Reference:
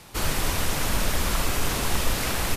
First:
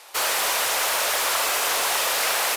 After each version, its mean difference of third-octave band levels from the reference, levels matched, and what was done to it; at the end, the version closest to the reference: 8.0 dB: HPF 520 Hz 24 dB/oct; in parallel at -9.5 dB: companded quantiser 2-bit; on the sum: gain +3 dB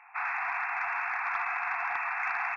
26.0 dB: FFT band-pass 680–2700 Hz; dynamic EQ 1600 Hz, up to +4 dB, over -44 dBFS, Q 1.1; soft clip -17.5 dBFS, distortion -28 dB; gain -1 dB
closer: first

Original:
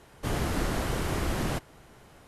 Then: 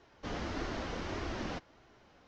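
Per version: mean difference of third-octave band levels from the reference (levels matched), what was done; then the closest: 5.0 dB: steep low-pass 6200 Hz 48 dB/oct; low shelf 100 Hz -7 dB; flange 1.6 Hz, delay 2.6 ms, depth 1.5 ms, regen -44%; gain -3 dB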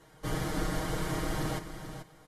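3.5 dB: notch 2600 Hz, Q 6.6; comb 6.4 ms, depth 99%; echo 0.436 s -10 dB; gain -6 dB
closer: second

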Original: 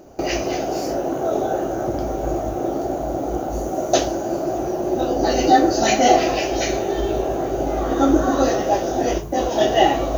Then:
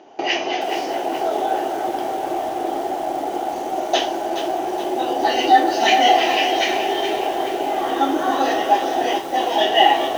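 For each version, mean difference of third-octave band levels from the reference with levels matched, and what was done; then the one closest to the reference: 7.0 dB: in parallel at +1 dB: limiter -10.5 dBFS, peak gain reduction 8.5 dB; on the sum: speaker cabinet 440–5000 Hz, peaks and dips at 550 Hz -9 dB, 850 Hz +6 dB, 1300 Hz -5 dB, 1900 Hz +4 dB, 3100 Hz +9 dB, 4500 Hz -5 dB; lo-fi delay 0.423 s, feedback 55%, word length 5-bit, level -8.5 dB; gain -3.5 dB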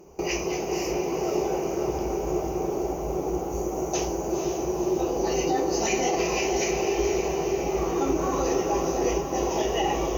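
4.0 dB: ripple EQ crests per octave 0.78, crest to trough 12 dB; limiter -10.5 dBFS, peak gain reduction 9.5 dB; diffused feedback echo 0.502 s, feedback 58%, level -5.5 dB; gain -6.5 dB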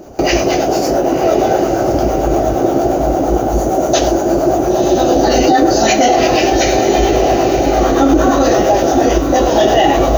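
2.5 dB: harmonic tremolo 8.7 Hz, depth 50%, crossover 550 Hz; on a send: diffused feedback echo 1.029 s, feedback 43%, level -10 dB; on the sum: maximiser +13 dB; gain -1 dB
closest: third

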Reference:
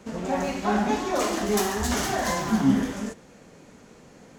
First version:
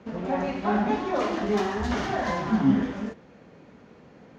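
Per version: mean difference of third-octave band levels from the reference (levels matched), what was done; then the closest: 4.5 dB: HPF 54 Hz; air absorption 220 m; notch 7800 Hz, Q 19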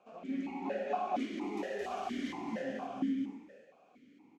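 9.5 dB: loudspeakers at several distances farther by 75 m -5 dB, 86 m -9 dB; non-linear reverb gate 0.35 s rising, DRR 5 dB; vowel sequencer 4.3 Hz; gain -3 dB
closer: first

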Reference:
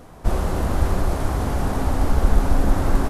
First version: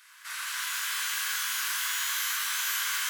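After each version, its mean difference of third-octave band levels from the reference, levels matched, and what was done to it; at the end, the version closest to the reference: 25.0 dB: minimum comb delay 1.9 ms; steep high-pass 1400 Hz 36 dB/oct; tape echo 89 ms, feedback 66%, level -11 dB; shimmer reverb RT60 2.3 s, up +12 st, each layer -2 dB, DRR -3.5 dB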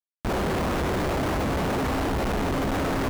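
4.5 dB: weighting filter D; Schmitt trigger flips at -28 dBFS; high shelf 2500 Hz -8 dB; upward compressor, threshold -35 dBFS; gain +1.5 dB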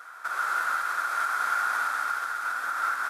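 14.0 dB: notch 2900 Hz, Q 12; compressor, threshold -18 dBFS, peak gain reduction 10 dB; resonant high-pass 1400 Hz, resonance Q 12; on a send: thin delay 0.139 s, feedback 84%, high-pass 2100 Hz, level -9 dB; on the sum: gain -2 dB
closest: second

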